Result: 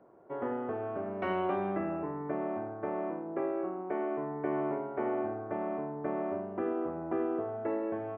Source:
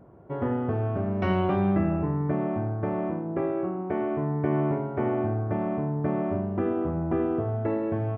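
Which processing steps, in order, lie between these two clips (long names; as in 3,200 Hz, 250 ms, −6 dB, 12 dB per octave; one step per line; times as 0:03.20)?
three-way crossover with the lows and the highs turned down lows −20 dB, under 270 Hz, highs −14 dB, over 3,100 Hz
level −3.5 dB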